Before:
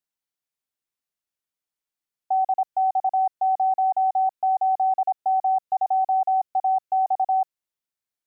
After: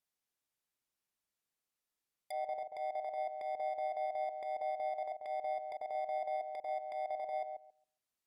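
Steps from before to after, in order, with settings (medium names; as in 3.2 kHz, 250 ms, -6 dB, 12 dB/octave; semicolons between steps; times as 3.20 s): bit-reversed sample order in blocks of 32 samples; peak limiter -26 dBFS, peak gain reduction 9 dB; low-pass that closes with the level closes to 950 Hz, closed at -31 dBFS; transient shaper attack -7 dB, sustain -1 dB; filtered feedback delay 137 ms, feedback 20%, low-pass 930 Hz, level -4.5 dB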